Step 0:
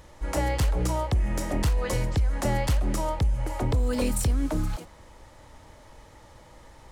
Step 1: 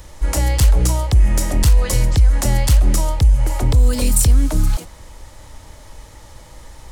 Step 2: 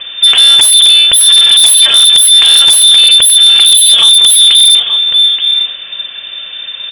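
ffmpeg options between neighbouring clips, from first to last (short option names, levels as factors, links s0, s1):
-filter_complex "[0:a]highshelf=f=3600:g=10.5,acrossover=split=220|3000[s0][s1][s2];[s1]acompressor=threshold=0.0282:ratio=2.5[s3];[s0][s3][s2]amix=inputs=3:normalize=0,lowshelf=f=86:g=10.5,volume=1.78"
-af "lowpass=f=3100:t=q:w=0.5098,lowpass=f=3100:t=q:w=0.6013,lowpass=f=3100:t=q:w=0.9,lowpass=f=3100:t=q:w=2.563,afreqshift=-3600,aecho=1:1:877:0.282,aeval=exprs='0.75*sin(PI/2*3.16*val(0)/0.75)':c=same,volume=1.12"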